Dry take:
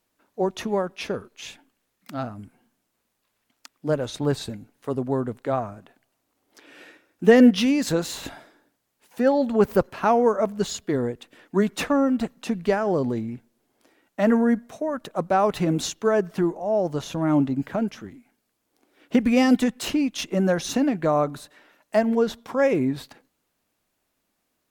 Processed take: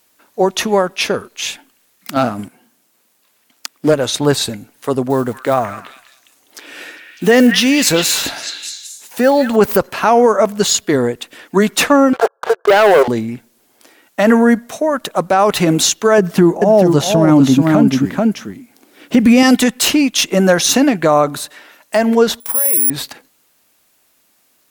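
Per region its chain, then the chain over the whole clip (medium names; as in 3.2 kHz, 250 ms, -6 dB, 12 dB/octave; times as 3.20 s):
2.16–3.94 s: high-pass 120 Hz + peaking EQ 260 Hz +3.5 dB 2.8 oct + waveshaping leveller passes 1
5.10–9.57 s: block-companded coder 7-bit + compression 1.5:1, threshold -21 dBFS + repeats whose band climbs or falls 201 ms, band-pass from 1.9 kHz, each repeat 0.7 oct, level -5 dB
12.13–13.08 s: brick-wall FIR band-pass 370–1700 Hz + waveshaping leveller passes 3
16.18–19.43 s: peaking EQ 180 Hz +8.5 dB 2.1 oct + delay 436 ms -5 dB
22.40–22.90 s: bass shelf 420 Hz -5 dB + careless resampling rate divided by 4×, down none, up zero stuff + upward expansion, over -28 dBFS
whole clip: tilt EQ +2 dB/octave; loudness maximiser +14 dB; trim -1 dB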